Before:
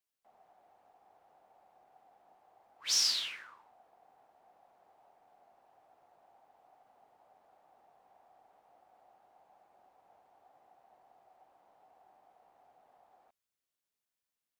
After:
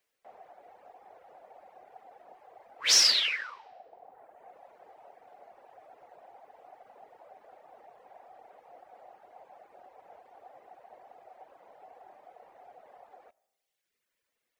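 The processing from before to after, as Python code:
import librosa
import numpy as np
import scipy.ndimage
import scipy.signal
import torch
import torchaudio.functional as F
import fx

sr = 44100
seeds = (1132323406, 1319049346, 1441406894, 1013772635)

y = fx.graphic_eq_10(x, sr, hz=(500, 2000, 16000), db=(11, 8, -3))
y = fx.rev_freeverb(y, sr, rt60_s=1.0, hf_ratio=0.95, predelay_ms=45, drr_db=15.0)
y = fx.dereverb_blind(y, sr, rt60_s=1.2)
y = y * librosa.db_to_amplitude(8.0)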